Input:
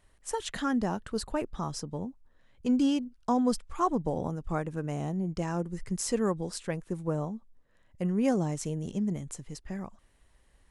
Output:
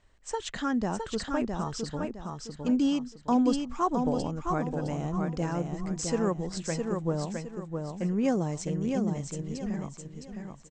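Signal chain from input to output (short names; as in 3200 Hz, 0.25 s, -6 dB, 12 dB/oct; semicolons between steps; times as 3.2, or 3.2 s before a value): steep low-pass 8200 Hz 96 dB/oct; on a send: feedback echo 0.662 s, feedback 33%, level -4.5 dB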